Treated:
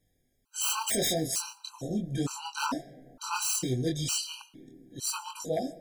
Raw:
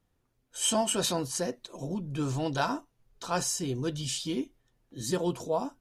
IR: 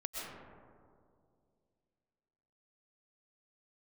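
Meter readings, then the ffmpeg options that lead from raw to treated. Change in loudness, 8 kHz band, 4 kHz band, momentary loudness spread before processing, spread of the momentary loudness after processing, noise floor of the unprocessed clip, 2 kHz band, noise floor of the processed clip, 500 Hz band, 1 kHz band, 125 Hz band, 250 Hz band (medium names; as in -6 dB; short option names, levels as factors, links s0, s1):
0.0 dB, +2.0 dB, +0.5 dB, 11 LU, 14 LU, -75 dBFS, +0.5 dB, -74 dBFS, -3.5 dB, -2.0 dB, -1.0 dB, -2.0 dB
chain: -filter_complex "[0:a]highshelf=f=3600:g=9.5,flanger=delay=19.5:depth=6.4:speed=0.35,aeval=exprs='0.0562*(abs(mod(val(0)/0.0562+3,4)-2)-1)':c=same,asplit=2[s0][s1];[1:a]atrim=start_sample=2205[s2];[s1][s2]afir=irnorm=-1:irlink=0,volume=0.112[s3];[s0][s3]amix=inputs=2:normalize=0,afftfilt=real='re*gt(sin(2*PI*1.1*pts/sr)*(1-2*mod(floor(b*sr/1024/790),2)),0)':imag='im*gt(sin(2*PI*1.1*pts/sr)*(1-2*mod(floor(b*sr/1024/790),2)),0)':win_size=1024:overlap=0.75,volume=1.58"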